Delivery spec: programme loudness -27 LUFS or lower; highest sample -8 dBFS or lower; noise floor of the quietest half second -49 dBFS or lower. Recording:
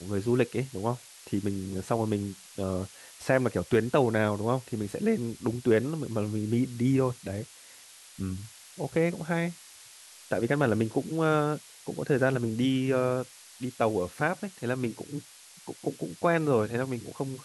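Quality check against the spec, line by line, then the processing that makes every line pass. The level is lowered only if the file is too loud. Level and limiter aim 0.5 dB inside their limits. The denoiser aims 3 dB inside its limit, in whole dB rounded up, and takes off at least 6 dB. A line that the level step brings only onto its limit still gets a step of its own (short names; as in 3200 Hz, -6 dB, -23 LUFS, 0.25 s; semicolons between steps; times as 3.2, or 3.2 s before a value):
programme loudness -29.0 LUFS: OK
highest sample -10.5 dBFS: OK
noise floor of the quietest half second -51 dBFS: OK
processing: none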